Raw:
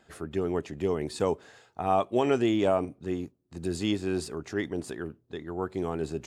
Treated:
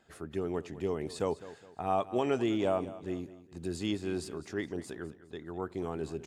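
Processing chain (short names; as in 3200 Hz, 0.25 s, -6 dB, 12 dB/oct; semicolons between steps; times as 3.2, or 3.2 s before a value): feedback echo 0.206 s, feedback 38%, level -16 dB; gain -5 dB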